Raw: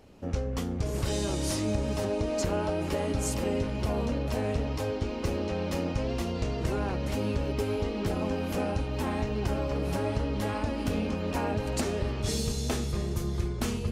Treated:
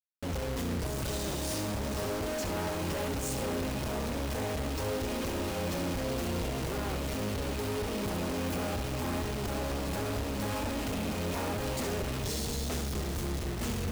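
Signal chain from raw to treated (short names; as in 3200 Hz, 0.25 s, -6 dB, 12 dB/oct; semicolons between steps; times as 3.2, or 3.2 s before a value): companded quantiser 2-bit; on a send: flutter echo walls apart 11.8 m, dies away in 0.44 s; on the sum: gain -7.5 dB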